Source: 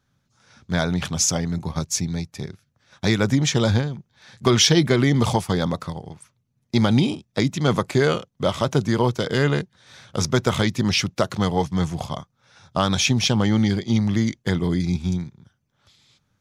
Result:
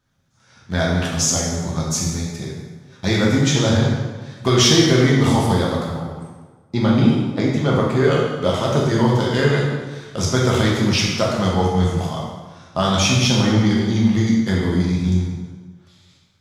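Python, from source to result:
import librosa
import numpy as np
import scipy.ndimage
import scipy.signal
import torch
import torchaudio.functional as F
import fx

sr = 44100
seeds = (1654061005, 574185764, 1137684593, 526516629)

y = fx.high_shelf(x, sr, hz=3400.0, db=-10.0, at=(5.86, 8.11))
y = fx.rev_plate(y, sr, seeds[0], rt60_s=1.4, hf_ratio=0.75, predelay_ms=0, drr_db=-4.0)
y = y * 10.0 ** (-2.0 / 20.0)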